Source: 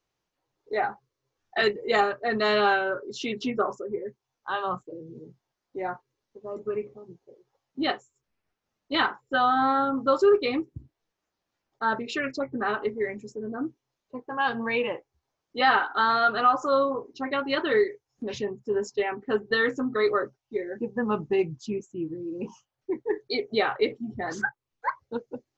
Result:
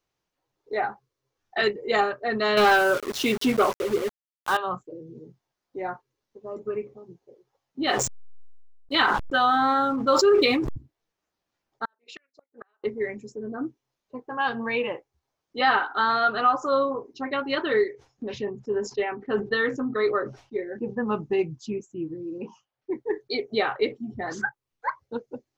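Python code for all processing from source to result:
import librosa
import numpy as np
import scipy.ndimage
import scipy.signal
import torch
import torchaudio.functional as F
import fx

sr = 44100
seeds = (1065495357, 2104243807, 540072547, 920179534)

y = fx.chain(x, sr, fx.leveller(passes=2),
    fx.sample_gate(floor_db=-30.0), at=(2.57, 4.57))
y = fx.chain(y, sr, fx.high_shelf(hz=2100.0, db=6.5),
    fx.backlash(play_db=-48.0),
    fx.sustainer(db_per_s=29.0), at=(7.87, 10.76))
y = fx.chain(y, sr, fx.highpass(hz=580.0, slope=12),
    fx.level_steps(step_db=11),
    fx.gate_flip(shuts_db=-29.0, range_db=-38), at=(11.85, 12.84))
y = fx.chain(y, sr, fx.air_absorb(metres=85.0),
    fx.sustainer(db_per_s=150.0), at=(17.91, 21.07))
y = fx.chain(y, sr, fx.lowpass(hz=4400.0, slope=12),
    fx.low_shelf(hz=140.0, db=-9.5), at=(22.38, 22.91))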